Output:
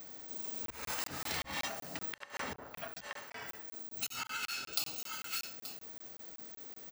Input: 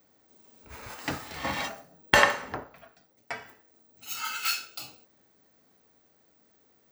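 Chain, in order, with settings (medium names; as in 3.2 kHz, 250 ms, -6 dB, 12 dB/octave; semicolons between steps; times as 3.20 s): delay 877 ms -22.5 dB; inverted gate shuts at -8 dBFS, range -36 dB; slow attack 385 ms; 4.09–4.73 s: tilt EQ -3 dB/octave; compression 5:1, threshold -48 dBFS, peak gain reduction 11.5 dB; treble shelf 2.8 kHz +7.5 dB; hum notches 60/120 Hz; crackling interface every 0.19 s, samples 1024, zero, from 0.66 s; trim +9.5 dB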